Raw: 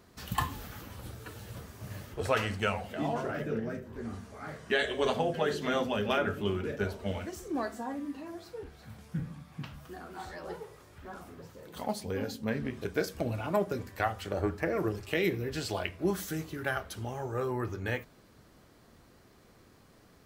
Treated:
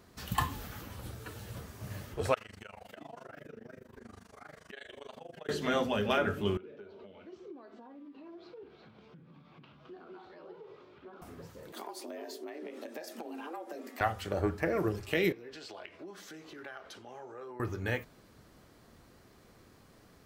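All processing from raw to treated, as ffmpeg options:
ffmpeg -i in.wav -filter_complex "[0:a]asettb=1/sr,asplit=3[link_01][link_02][link_03];[link_01]atrim=end=2.344[link_04];[link_02]atrim=start=2.34:end=5.49,asetpts=PTS-STARTPTS,afade=type=in:duration=0.004:curve=qsin,afade=type=out:start_time=3.146:duration=0.004:curve=qsin,lowshelf=frequency=340:gain=-8,acompressor=threshold=-43dB:ratio=4:attack=3.2:release=140:knee=1:detection=peak,tremolo=f=25:d=0.947[link_05];[link_03]atrim=start=5.486[link_06];[link_04][link_05]acrossfade=duration=0.004:curve1=hsin:curve2=qsin[link_07];[link_07][link_06]acrossfade=duration=0.004:curve1=qsin:curve2=hsin,asettb=1/sr,asplit=3[link_08][link_09][link_10];[link_08]atrim=end=6.574[link_11];[link_09]atrim=start=6.57:end=11.22,asetpts=PTS-STARTPTS,afade=type=in:duration=0.004:curve=qsin,afade=type=out:start_time=4.646:duration=0.004:curve=qsin,acompressor=threshold=-47dB:ratio=12:attack=3.2:release=140:knee=1:detection=peak,highpass=200,equalizer=frequency=380:width_type=q:width=4:gain=7,equalizer=frequency=750:width_type=q:width=4:gain=-3,equalizer=frequency=1800:width_type=q:width=4:gain=-8,lowpass=frequency=3900:width=0.5412,lowpass=frequency=3900:width=1.3066[link_12];[link_10]atrim=start=11.216[link_13];[link_11][link_12]acrossfade=duration=0.004:curve1=hsin:curve2=qsin[link_14];[link_14][link_13]acrossfade=duration=0.004:curve1=qsin:curve2=hsin,asettb=1/sr,asplit=3[link_15][link_16][link_17];[link_15]atrim=end=11.724[link_18];[link_16]atrim=start=11.72:end=14.01,asetpts=PTS-STARTPTS,afade=type=in:duration=0.004:curve=qsin,afade=type=out:start_time=2.286:duration=0.004:curve=qsin,acompressor=threshold=-38dB:ratio=12:attack=3.2:release=140:knee=1:detection=peak,afreqshift=160[link_19];[link_17]atrim=start=14.006[link_20];[link_18][link_19]acrossfade=duration=0.004:curve1=hsin:curve2=qsin[link_21];[link_21][link_20]acrossfade=duration=0.004:curve1=qsin:curve2=hsin,asettb=1/sr,asplit=3[link_22][link_23][link_24];[link_22]atrim=end=15.324[link_25];[link_23]atrim=start=15.32:end=17.6,asetpts=PTS-STARTPTS,afade=type=in:duration=0.004:curve=qsin,afade=type=out:start_time=2.276:duration=0.004:curve=qsin,acompressor=threshold=-40dB:ratio=10:attack=3.2:release=140:knee=1:detection=peak,acrossover=split=250 6400:gain=0.1 1 0.158[link_26][link_27][link_28];[link_26][link_27][link_28]amix=inputs=3:normalize=0[link_29];[link_24]atrim=start=17.596[link_30];[link_25][link_29]acrossfade=duration=0.004:curve1=hsin:curve2=qsin[link_31];[link_31][link_30]acrossfade=duration=0.004:curve1=qsin:curve2=hsin" out.wav

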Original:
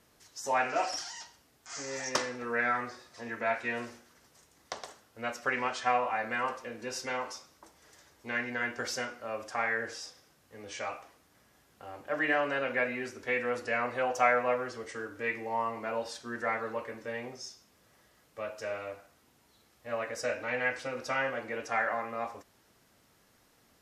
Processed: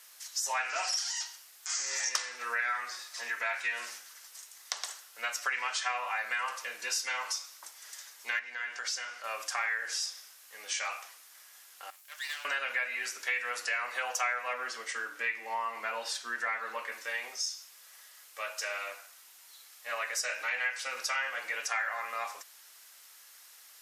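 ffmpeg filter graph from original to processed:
ffmpeg -i in.wav -filter_complex "[0:a]asettb=1/sr,asplit=3[link_01][link_02][link_03];[link_01]atrim=end=8.394[link_04];[link_02]atrim=start=8.39:end=9.24,asetpts=PTS-STARTPTS,afade=type=in:duration=0.004:curve=qsin,afade=type=out:start_time=0.846:duration=0.004:curve=qsin,lowpass=7300,acompressor=threshold=-46dB:ratio=2:attack=3.2:release=140:knee=1:detection=peak[link_05];[link_03]atrim=start=9.236[link_06];[link_04][link_05]acrossfade=duration=0.004:curve1=hsin:curve2=qsin[link_07];[link_07][link_06]acrossfade=duration=0.004:curve1=qsin:curve2=hsin,asettb=1/sr,asplit=3[link_08][link_09][link_10];[link_08]atrim=end=11.904[link_11];[link_09]atrim=start=11.9:end=12.45,asetpts=PTS-STARTPTS,afade=type=in:duration=0.004:curve=qsin,afade=type=out:start_time=0.546:duration=0.004:curve=qsin,aderivative,aeval=exprs='max(val(0),0)':channel_layout=same[link_12];[link_10]atrim=start=12.446[link_13];[link_11][link_12]acrossfade=duration=0.004:curve1=hsin:curve2=qsin[link_14];[link_14][link_13]acrossfade=duration=0.004:curve1=qsin:curve2=hsin,asettb=1/sr,asplit=3[link_15][link_16][link_17];[link_15]atrim=end=14.534[link_18];[link_16]atrim=start=14.53:end=16.92,asetpts=PTS-STARTPTS,afade=type=in:duration=0.004:curve=qsin,afade=type=out:start_time=2.386:duration=0.004:curve=qsin,highpass=frequency=170:width=0.5412,highpass=frequency=170:width=1.3066,bass=frequency=250:gain=14,treble=frequency=4000:gain=-6[link_19];[link_17]atrim=start=16.916[link_20];[link_18][link_19]acrossfade=duration=0.004:curve1=hsin:curve2=qsin[link_21];[link_21][link_20]acrossfade=duration=0.004:curve1=qsin:curve2=hsin,highpass=1300,highshelf=frequency=5000:gain=9.5,acompressor=threshold=-40dB:ratio=3,volume=8.5dB" out.wav

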